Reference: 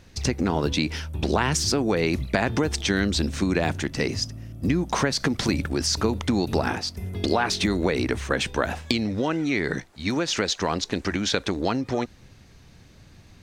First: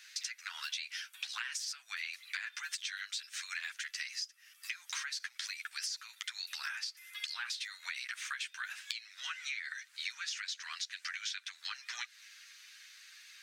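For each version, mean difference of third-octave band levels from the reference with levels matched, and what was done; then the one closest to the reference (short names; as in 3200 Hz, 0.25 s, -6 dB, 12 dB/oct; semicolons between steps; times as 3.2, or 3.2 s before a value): 21.0 dB: steep high-pass 1500 Hz 36 dB/oct; chorus voices 4, 0.53 Hz, delay 10 ms, depth 1.7 ms; compressor 12:1, threshold -45 dBFS, peak gain reduction 21.5 dB; gain +8 dB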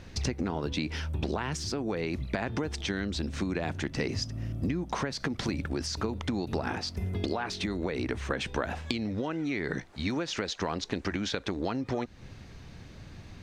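3.5 dB: compressor 3:1, threshold -34 dBFS, peak gain reduction 13 dB; high shelf 7100 Hz -12 dB; vocal rider 0.5 s; gain +3 dB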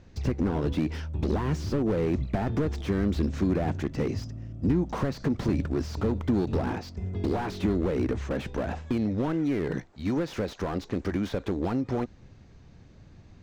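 5.0 dB: steep low-pass 7900 Hz 72 dB/oct; tilt shelf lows +5.5 dB, about 1500 Hz; slew limiter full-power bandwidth 58 Hz; gain -6 dB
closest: second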